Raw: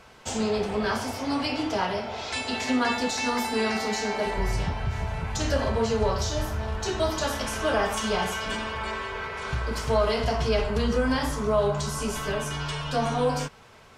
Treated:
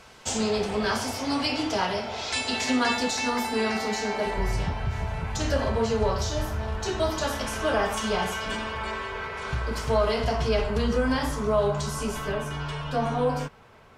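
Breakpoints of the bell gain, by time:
bell 6800 Hz 2.3 oct
2.92 s +5 dB
3.33 s -1.5 dB
11.98 s -1.5 dB
12.43 s -9 dB

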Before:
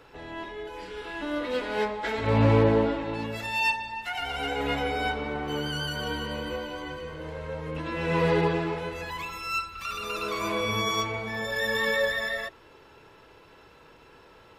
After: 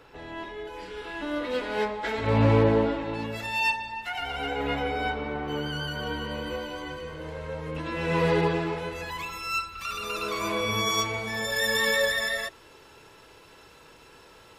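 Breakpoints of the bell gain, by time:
bell 9200 Hz 1.9 oct
3.89 s 0 dB
4.58 s -7.5 dB
6.14 s -7.5 dB
6.62 s +3 dB
10.67 s +3 dB
11.16 s +12 dB

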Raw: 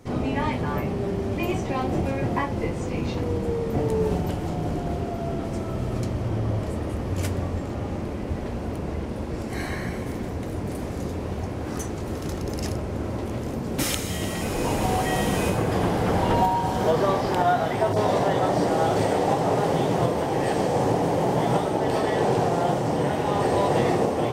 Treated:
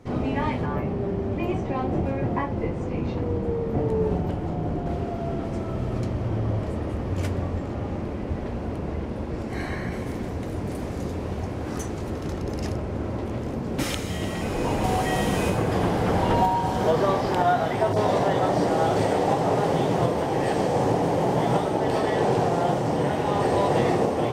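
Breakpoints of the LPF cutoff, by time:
LPF 6 dB/oct
3400 Hz
from 0.66 s 1500 Hz
from 4.86 s 3400 Hz
from 9.92 s 8300 Hz
from 12.1 s 3600 Hz
from 14.84 s 8300 Hz

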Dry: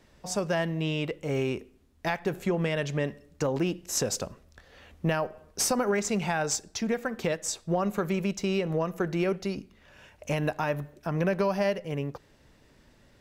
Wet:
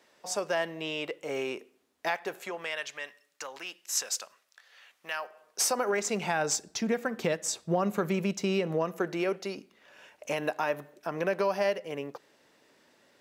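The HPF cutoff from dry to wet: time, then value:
2.1 s 430 Hz
2.95 s 1300 Hz
5.13 s 1300 Hz
5.7 s 480 Hz
6.67 s 140 Hz
8.47 s 140 Hz
9.25 s 340 Hz

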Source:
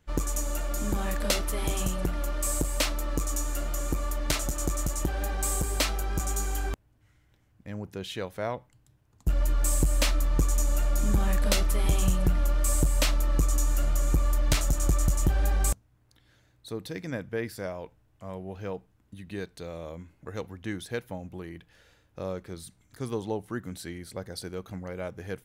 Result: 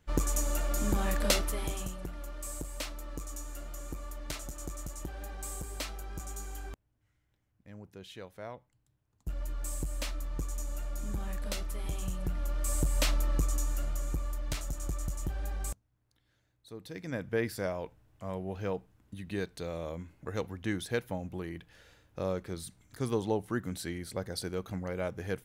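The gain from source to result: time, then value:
1.35 s -0.5 dB
1.99 s -11.5 dB
12.07 s -11.5 dB
13.12 s -3 dB
14.38 s -11 dB
16.7 s -11 dB
17.33 s +1 dB

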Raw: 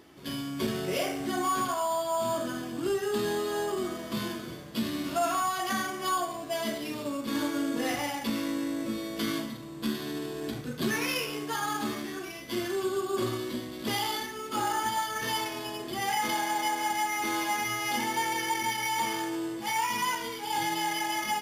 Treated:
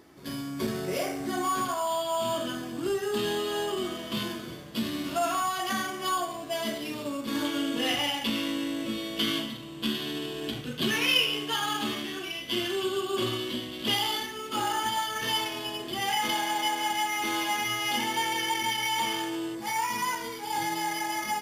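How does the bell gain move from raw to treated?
bell 3000 Hz 0.46 oct
-5.5 dB
from 1.32 s +1 dB
from 1.87 s +10.5 dB
from 2.55 s +1.5 dB
from 3.17 s +10.5 dB
from 4.23 s +4 dB
from 7.45 s +14.5 dB
from 13.94 s +7.5 dB
from 19.55 s -4 dB

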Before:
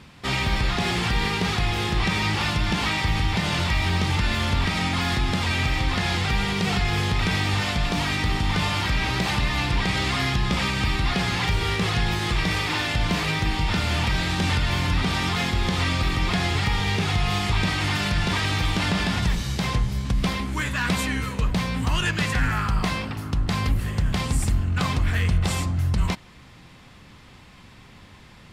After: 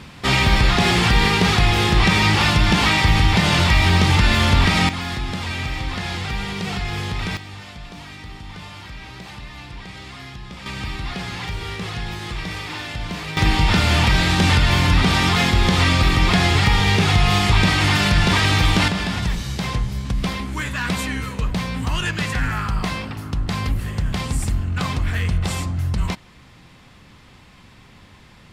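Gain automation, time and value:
+7.5 dB
from 4.89 s -2.5 dB
from 7.37 s -13 dB
from 10.66 s -5 dB
from 13.37 s +7 dB
from 18.88 s +0.5 dB

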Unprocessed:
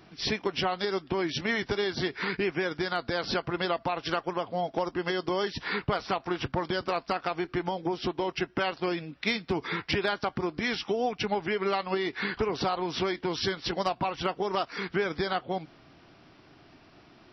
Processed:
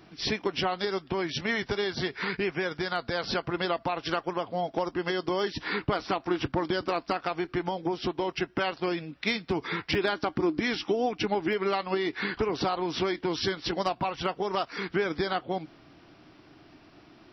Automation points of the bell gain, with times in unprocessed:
bell 310 Hz 0.3 oct
+3.5 dB
from 0.87 s -4.5 dB
from 3.38 s +2 dB
from 5.4 s +9 dB
from 7.15 s +1.5 dB
from 9.95 s +13.5 dB
from 11.53 s +5 dB
from 14.01 s -2 dB
from 14.71 s +5.5 dB

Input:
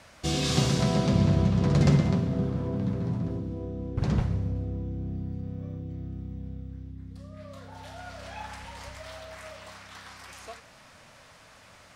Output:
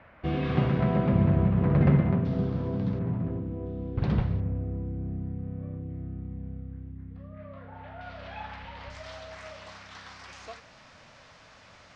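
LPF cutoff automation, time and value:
LPF 24 dB/oct
2300 Hz
from 2.25 s 4900 Hz
from 2.99 s 2600 Hz
from 3.66 s 4000 Hz
from 4.4 s 2400 Hz
from 8.01 s 3800 Hz
from 8.9 s 6300 Hz

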